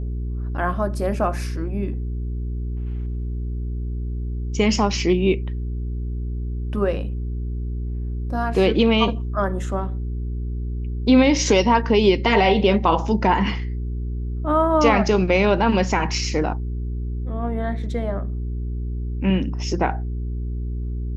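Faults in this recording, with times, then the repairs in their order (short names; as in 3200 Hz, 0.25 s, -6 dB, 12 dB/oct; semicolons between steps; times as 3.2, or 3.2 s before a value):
hum 60 Hz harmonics 7 -26 dBFS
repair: de-hum 60 Hz, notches 7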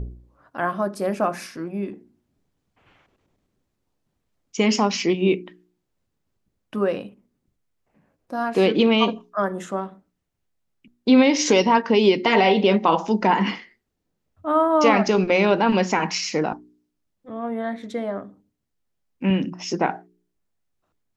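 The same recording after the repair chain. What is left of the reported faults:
none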